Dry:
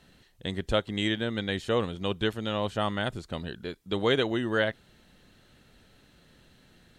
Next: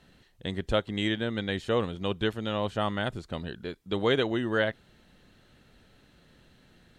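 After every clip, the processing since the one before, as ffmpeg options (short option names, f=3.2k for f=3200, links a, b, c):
-af "highshelf=f=4.6k:g=-5"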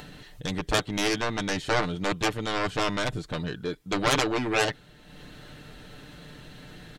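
-af "acompressor=mode=upward:threshold=-43dB:ratio=2.5,aeval=exprs='0.282*(cos(1*acos(clip(val(0)/0.282,-1,1)))-cos(1*PI/2))+0.126*(cos(7*acos(clip(val(0)/0.282,-1,1)))-cos(7*PI/2))':c=same,aecho=1:1:6.7:0.47,volume=-1dB"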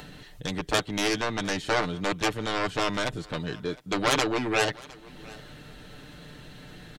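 -filter_complex "[0:a]acrossover=split=190[a][b];[a]alimiter=level_in=9.5dB:limit=-24dB:level=0:latency=1,volume=-9.5dB[c];[b]aecho=1:1:710:0.0794[d];[c][d]amix=inputs=2:normalize=0"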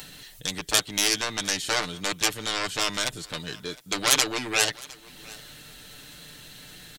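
-af "crystalizer=i=7:c=0,volume=-6dB"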